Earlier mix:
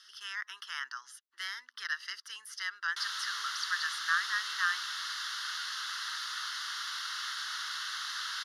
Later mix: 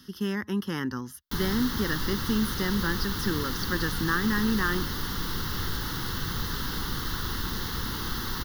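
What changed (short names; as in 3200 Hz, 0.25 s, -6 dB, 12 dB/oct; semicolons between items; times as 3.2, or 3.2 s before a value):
background: entry -1.65 s; master: remove elliptic band-pass 1300–9000 Hz, stop band 70 dB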